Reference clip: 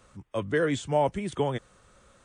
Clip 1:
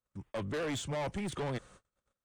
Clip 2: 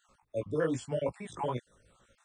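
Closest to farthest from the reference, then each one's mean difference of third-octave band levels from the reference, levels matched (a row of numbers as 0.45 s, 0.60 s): 2, 1; 4.5 dB, 7.5 dB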